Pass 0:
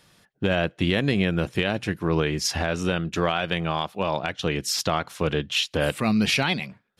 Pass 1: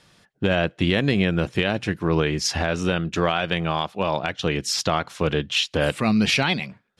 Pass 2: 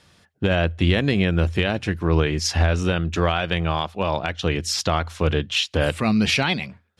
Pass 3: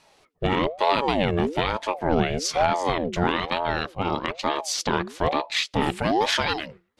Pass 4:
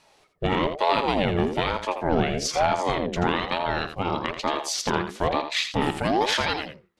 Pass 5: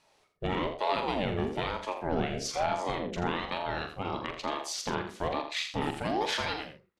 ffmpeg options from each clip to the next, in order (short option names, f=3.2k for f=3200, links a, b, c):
-af "lowpass=8.9k,volume=2dB"
-af "equalizer=f=83:w=6.2:g=13.5"
-af "aeval=exprs='val(0)*sin(2*PI*520*n/s+520*0.5/1.1*sin(2*PI*1.1*n/s))':c=same"
-af "aecho=1:1:83:0.335,volume=-1dB"
-filter_complex "[0:a]asplit=2[a][b];[b]adelay=42,volume=-8.5dB[c];[a][c]amix=inputs=2:normalize=0,volume=-8dB"